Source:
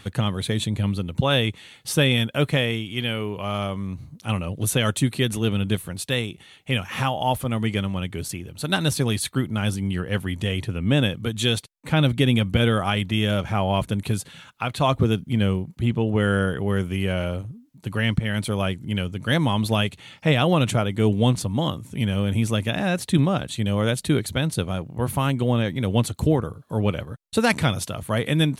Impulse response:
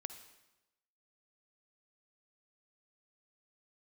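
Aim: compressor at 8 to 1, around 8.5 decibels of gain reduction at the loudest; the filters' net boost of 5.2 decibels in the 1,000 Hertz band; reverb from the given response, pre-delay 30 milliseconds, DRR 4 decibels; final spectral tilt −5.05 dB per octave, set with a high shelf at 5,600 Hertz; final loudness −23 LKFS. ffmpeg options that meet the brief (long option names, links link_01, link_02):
-filter_complex "[0:a]equalizer=frequency=1000:width_type=o:gain=7,highshelf=frequency=5600:gain=-4.5,acompressor=threshold=-22dB:ratio=8,asplit=2[link_01][link_02];[1:a]atrim=start_sample=2205,adelay=30[link_03];[link_02][link_03]afir=irnorm=-1:irlink=0,volume=-1dB[link_04];[link_01][link_04]amix=inputs=2:normalize=0,volume=4dB"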